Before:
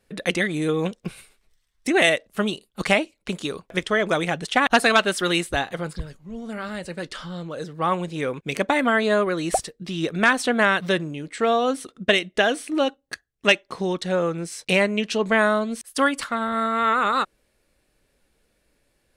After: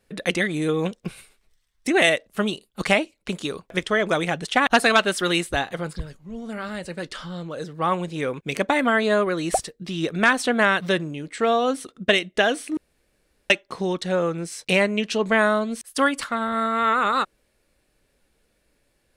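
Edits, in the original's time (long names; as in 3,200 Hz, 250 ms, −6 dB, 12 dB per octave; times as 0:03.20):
0:12.77–0:13.50: fill with room tone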